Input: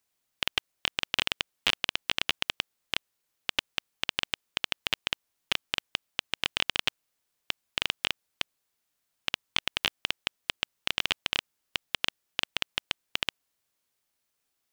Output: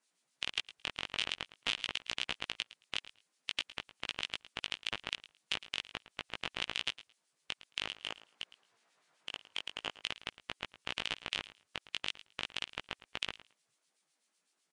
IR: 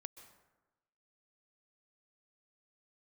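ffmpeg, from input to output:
-filter_complex "[0:a]alimiter=limit=0.168:level=0:latency=1,acrossover=split=2000[s0][s1];[s0]aeval=exprs='val(0)*(1-0.7/2+0.7/2*cos(2*PI*7.9*n/s))':c=same[s2];[s1]aeval=exprs='val(0)*(1-0.7/2-0.7/2*cos(2*PI*7.9*n/s))':c=same[s3];[s2][s3]amix=inputs=2:normalize=0,asplit=3[s4][s5][s6];[s4]afade=t=out:st=7.85:d=0.02[s7];[s5]asplit=2[s8][s9];[s9]highpass=f=720:p=1,volume=12.6,asoftclip=type=tanh:threshold=0.126[s10];[s8][s10]amix=inputs=2:normalize=0,lowpass=f=1100:p=1,volume=0.501,afade=t=in:st=7.85:d=0.02,afade=t=out:st=9.98:d=0.02[s11];[s6]afade=t=in:st=9.98:d=0.02[s12];[s7][s11][s12]amix=inputs=3:normalize=0,flanger=delay=17:depth=2.3:speed=0.47,asplit=2[s13][s14];[s14]aecho=0:1:110|220:0.141|0.0226[s15];[s13][s15]amix=inputs=2:normalize=0,volume=2.51" -ar 22050 -c:a libvorbis -b:a 48k

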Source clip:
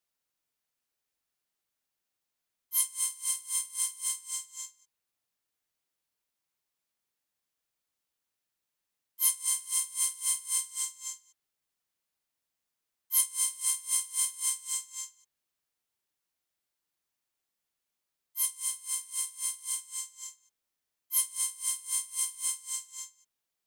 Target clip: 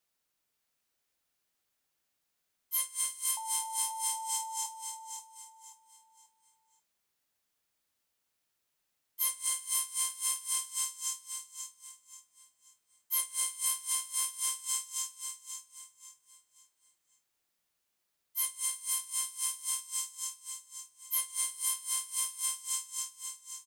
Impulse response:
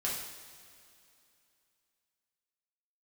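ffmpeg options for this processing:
-filter_complex "[0:a]asettb=1/sr,asplit=3[s0][s1][s2];[s0]atrim=end=3.374[s3];[s1]atrim=start=3.37:end=4.66,asetpts=PTS-STARTPTS,afade=t=in:d=0.004:c=qsin,afade=t=out:st=1.286:d=0.004:c=qsin,aeval=exprs='val(0)+0.0141*sin(2*PI*890*n/s)':c=same[s4];[s2]atrim=start=4.656[s5];[s3][s4]acrossfade=d=0.004:c1=hsin:c2=qsin[s6];[s6][s5]acrossfade=d=0.004:c1=qsin:c2=hsin,acrossover=split=1200|3500[s7][s8][s9];[s7]acompressor=threshold=0.00398:ratio=4[s10];[s8]acompressor=threshold=0.00501:ratio=4[s11];[s9]acompressor=threshold=0.02:ratio=4[s12];[s10][s11][s12]amix=inputs=3:normalize=0,aecho=1:1:534|1068|1602|2136:0.447|0.152|0.0516|0.0176,volume=1.5"

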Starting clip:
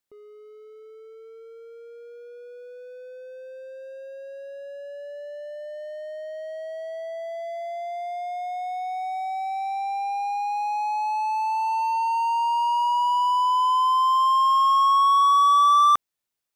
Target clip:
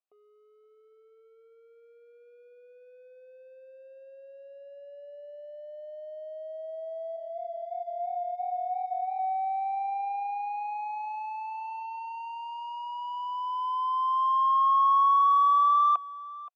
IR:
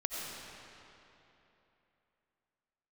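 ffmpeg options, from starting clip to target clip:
-filter_complex "[0:a]asettb=1/sr,asplit=3[s0][s1][s2];[s0]atrim=end=7.164[s3];[s1]atrim=start=7.16:end=9.19,asetpts=PTS-STARTPTS,afade=t=in:d=0.004:c=qsin,afade=t=out:st=2.026:d=0.004:c=qsin,flanger=delay=19.5:depth=6.4:speed=2.9[s4];[s2]atrim=start=9.186[s5];[s3][s4]acrossfade=d=0.004:c1=hsin:c2=qsin[s6];[s6][s5]acrossfade=d=0.004:c1=qsin:c2=hsin,asplit=3[s7][s8][s9];[s7]bandpass=f=730:t=q:w=8,volume=1[s10];[s8]bandpass=f=1090:t=q:w=8,volume=0.501[s11];[s9]bandpass=f=2440:t=q:w=8,volume=0.355[s12];[s10][s11][s12]amix=inputs=3:normalize=0,aecho=1:1:524:0.112,volume=1.26"

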